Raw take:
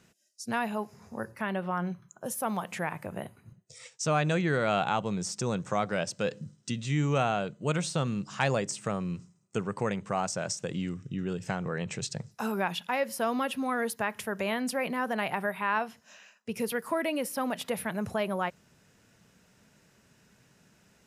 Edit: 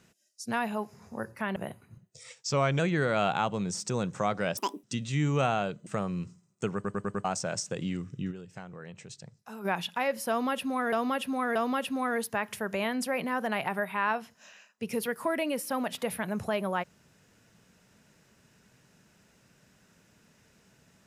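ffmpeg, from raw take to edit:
-filter_complex "[0:a]asplit=16[a][b][c][d][e][f][g][h][i][j][k][l][m][n][o][p];[a]atrim=end=1.562[q];[b]atrim=start=3.108:end=3.984[r];[c]atrim=start=3.98:end=4.31,asetpts=PTS-STARTPTS,asetrate=40131,aresample=44100,atrim=end_sample=15992,asetpts=PTS-STARTPTS[s];[d]atrim=start=4.306:end=6.094[t];[e]atrim=start=6.09:end=6.6,asetpts=PTS-STARTPTS,asetrate=85554,aresample=44100,atrim=end_sample=11593,asetpts=PTS-STARTPTS[u];[f]atrim=start=6.596:end=7.632[v];[g]atrim=start=8.788:end=9.772[w];[h]atrim=start=9.668:end=9.772[x];[i]atrim=start=9.668:end=9.772[y];[j]atrim=start=9.668:end=9.772[z];[k]atrim=start=9.668:end=9.772[aa];[l]atrim=start=10.168:end=11.39,asetpts=PTS-STARTPTS,afade=t=out:st=1.062:d=0.16:c=exp:silence=0.266073[ab];[m]atrim=start=11.39:end=12.42,asetpts=PTS-STARTPTS,volume=-11.5dB[ac];[n]atrim=start=12.42:end=13.852,asetpts=PTS-STARTPTS,afade=t=in:d=0.16:c=exp:silence=0.266073[ad];[o]atrim=start=13.218:end=13.852[ae];[p]atrim=start=13.218[af];[q][r]acrossfade=d=0.004:c1=hsin:c2=hsin[ag];[ag][s]acrossfade=d=0.004:c1=hsin:c2=hsin[ah];[ah][t]acrossfade=d=0.004:c1=hsin:c2=hsin[ai];[ai][u]acrossfade=d=0.004:c1=hsin:c2=hsin[aj];[aj][v]acrossfade=d=0.004:c1=hsin:c2=hsin[ak];[ak][w]acrossfade=d=0.004:c1=hsin:c2=hsin[al];[al][x]acrossfade=d=0.004:c1=hsin:c2=hsin[am];[am][y]acrossfade=d=0.004:c1=hsin:c2=hsin[an];[an][z]acrossfade=d=0.004:c1=hsin:c2=hsin[ao];[ao][aa]acrossfade=d=0.004:c1=hsin:c2=hsin[ap];[ab][ac][ad]concat=n=3:v=0:a=1[aq];[ap][aq]acrossfade=d=0.004:c1=hsin:c2=hsin[ar];[ar][ae]acrossfade=d=0.004:c1=hsin:c2=hsin[as];[as][af]acrossfade=d=0.004:c1=hsin:c2=hsin"

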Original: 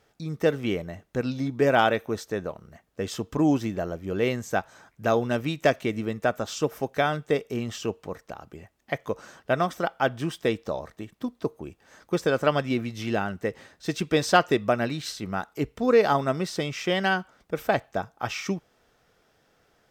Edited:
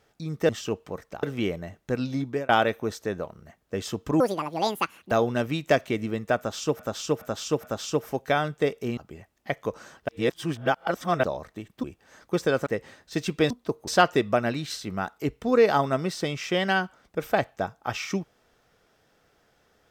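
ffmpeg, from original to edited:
-filter_complex "[0:a]asplit=16[a][b][c][d][e][f][g][h][i][j][k][l][m][n][o][p];[a]atrim=end=0.492[q];[b]atrim=start=7.658:end=8.402[r];[c]atrim=start=0.488:end=1.75,asetpts=PTS-STARTPTS,afade=t=out:st=1.002:d=0.26[s];[d]atrim=start=1.75:end=3.464,asetpts=PTS-STARTPTS,afade=t=in:d=0.004:c=hsin[t];[e]atrim=start=3.46:end=5.06,asetpts=PTS-STARTPTS,asetrate=77175,aresample=44100[u];[f]atrim=start=5.056:end=6.742[v];[g]atrim=start=6.318:end=6.742[w];[h]atrim=start=6.318:end=6.742[x];[i]atrim=start=6.318:end=7.662[y];[j]atrim=start=8.398:end=9.512[z];[k]atrim=start=9.508:end=10.662,asetpts=PTS-STARTPTS,areverse[aa];[l]atrim=start=10.658:end=11.262[ab];[m]atrim=start=11.628:end=12.462[ac];[n]atrim=start=13.388:end=14.232[ad];[o]atrim=start=11.258:end=11.632[ae];[p]atrim=start=14.228[af];[q][r]acrossfade=d=0.004:c1=hsin:c2=hsin[ag];[s][t]concat=n=2:v=0:a=1[ah];[ag][ah]acrossfade=d=0.004:c1=hsin:c2=hsin[ai];[ai][u]acrossfade=d=0.004:c1=hsin:c2=hsin[aj];[aj][v]acrossfade=d=0.004:c1=hsin:c2=hsin[ak];[ak][w]acrossfade=d=0.004:c1=hsin:c2=hsin[al];[al][x]acrossfade=d=0.004:c1=hsin:c2=hsin[am];[am][y]acrossfade=d=0.004:c1=hsin:c2=hsin[an];[an][z]acrossfade=d=0.004:c1=hsin:c2=hsin[ao];[ao][aa]acrossfade=d=0.004:c1=hsin:c2=hsin[ap];[ap][ab]acrossfade=d=0.004:c1=hsin:c2=hsin[aq];[aq][ac]acrossfade=d=0.004:c1=hsin:c2=hsin[ar];[ar][ad]acrossfade=d=0.004:c1=hsin:c2=hsin[as];[as][ae]acrossfade=d=0.004:c1=hsin:c2=hsin[at];[at][af]acrossfade=d=0.004:c1=hsin:c2=hsin"

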